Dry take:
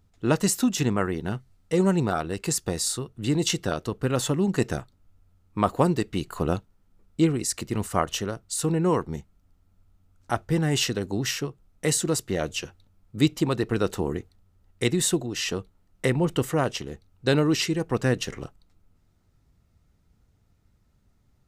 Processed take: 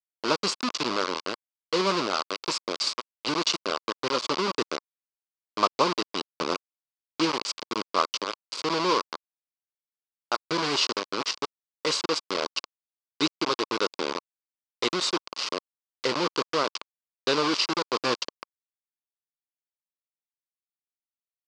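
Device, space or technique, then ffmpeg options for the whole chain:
hand-held game console: -af "acrusher=bits=3:mix=0:aa=0.000001,highpass=400,equalizer=f=740:t=q:w=4:g=-8,equalizer=f=1100:t=q:w=4:g=7,equalizer=f=1800:t=q:w=4:g=-8,equalizer=f=4700:t=q:w=4:g=8,lowpass=f=5600:w=0.5412,lowpass=f=5600:w=1.3066"

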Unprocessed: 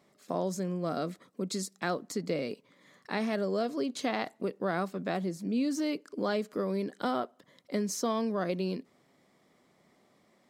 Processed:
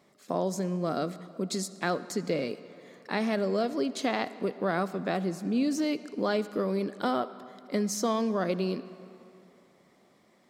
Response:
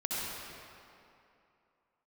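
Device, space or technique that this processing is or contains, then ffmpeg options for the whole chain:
filtered reverb send: -filter_complex "[0:a]asplit=2[s0][s1];[s1]highpass=150,lowpass=8900[s2];[1:a]atrim=start_sample=2205[s3];[s2][s3]afir=irnorm=-1:irlink=0,volume=0.106[s4];[s0][s4]amix=inputs=2:normalize=0,volume=1.26"

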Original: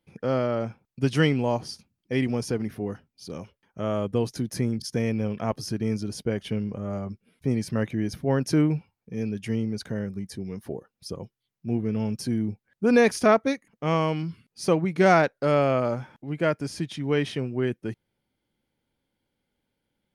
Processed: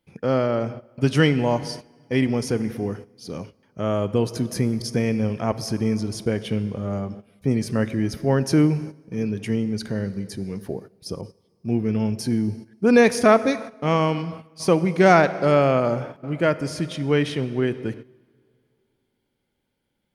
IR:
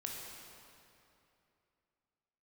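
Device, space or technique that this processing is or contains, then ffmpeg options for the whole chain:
keyed gated reverb: -filter_complex "[0:a]asplit=3[s0][s1][s2];[1:a]atrim=start_sample=2205[s3];[s1][s3]afir=irnorm=-1:irlink=0[s4];[s2]apad=whole_len=888436[s5];[s4][s5]sidechaingate=range=0.2:threshold=0.00708:ratio=16:detection=peak,volume=0.355[s6];[s0][s6]amix=inputs=2:normalize=0,asettb=1/sr,asplit=3[s7][s8][s9];[s7]atrim=end=11.214[s10];[s8]atrim=start=11.21:end=11.97,asetpts=PTS-STARTPTS,afade=t=in:d=0.004:c=qsin,afade=t=out:st=0.756:d=0.004:c=qsin,adynamicequalizer=threshold=0.00447:dfrequency=1600:dqfactor=0.7:tfrequency=1600:tqfactor=0.7:attack=5:release=100:ratio=0.375:range=1.5:mode=boostabove:tftype=highshelf[s11];[s9]atrim=start=11.966[s12];[s10][s11]acrossfade=d=0.004:c1=hsin:c2=qsin[s13];[s13][s12]acrossfade=d=0.004:c1=qsin:c2=hsin,volume=1.26"

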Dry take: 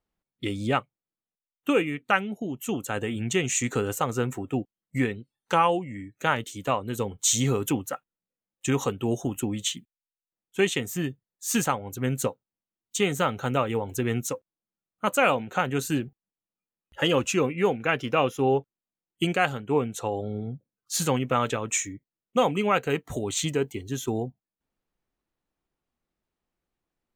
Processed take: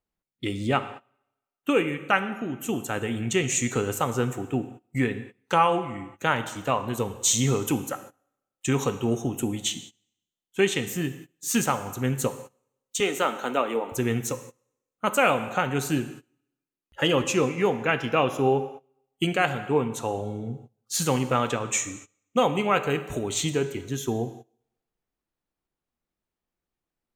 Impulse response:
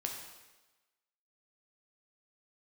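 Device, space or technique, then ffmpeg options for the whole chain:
keyed gated reverb: -filter_complex "[0:a]asettb=1/sr,asplit=3[s0][s1][s2];[s0]atrim=end=13.004[s3];[s1]atrim=start=13:end=13.92,asetpts=PTS-STARTPTS,afade=t=in:d=0.004:c=qsin,afade=t=out:st=0.916:d=0.004:c=qsin,highpass=f=250:w=0.5412,highpass=f=250:w=1.3066[s4];[s2]atrim=start=13.916[s5];[s3][s4]acrossfade=d=0.004:c1=hsin:c2=qsin[s6];[s6][s5]acrossfade=d=0.004:c1=qsin:c2=hsin,asplit=3[s7][s8][s9];[1:a]atrim=start_sample=2205[s10];[s8][s10]afir=irnorm=-1:irlink=0[s11];[s9]apad=whole_len=1197612[s12];[s11][s12]sidechaingate=range=0.0891:threshold=0.00398:ratio=16:detection=peak,volume=0.708[s13];[s7][s13]amix=inputs=2:normalize=0,volume=0.668"

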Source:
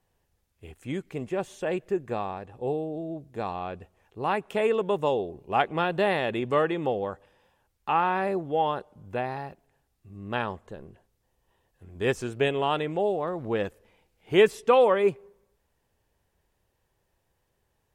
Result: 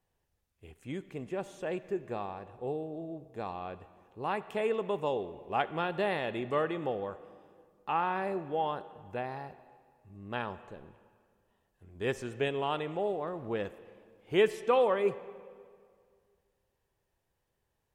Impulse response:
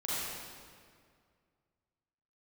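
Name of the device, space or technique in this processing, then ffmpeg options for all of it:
filtered reverb send: -filter_complex "[0:a]asplit=2[s0][s1];[s1]highpass=f=160:p=1,lowpass=5800[s2];[1:a]atrim=start_sample=2205[s3];[s2][s3]afir=irnorm=-1:irlink=0,volume=0.112[s4];[s0][s4]amix=inputs=2:normalize=0,volume=0.447"

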